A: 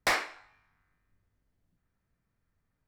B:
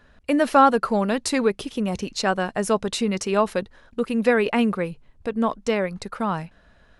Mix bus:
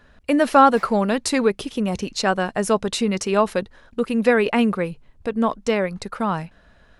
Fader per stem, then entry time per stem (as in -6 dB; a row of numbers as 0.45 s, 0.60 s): -18.0 dB, +2.0 dB; 0.70 s, 0.00 s